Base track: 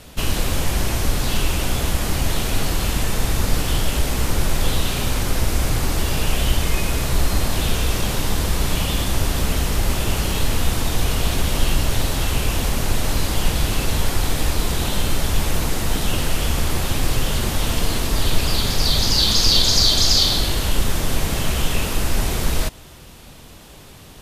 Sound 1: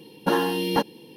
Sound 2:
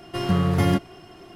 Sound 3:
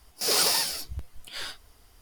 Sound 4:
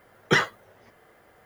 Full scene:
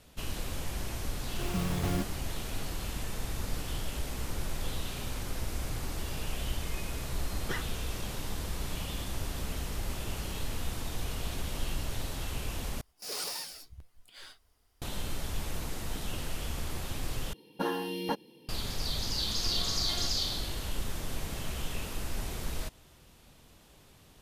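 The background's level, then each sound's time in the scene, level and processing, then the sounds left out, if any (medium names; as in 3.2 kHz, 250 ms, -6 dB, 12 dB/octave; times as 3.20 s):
base track -15.5 dB
1.25 s: add 2 -12 dB + decimation with a swept rate 15× 2.5 Hz
7.18 s: add 4 -17 dB
12.81 s: replace with 3 -13.5 dB
17.33 s: replace with 1 -10 dB
19.30 s: add 2 -13 dB + high-pass 1.1 kHz 6 dB/octave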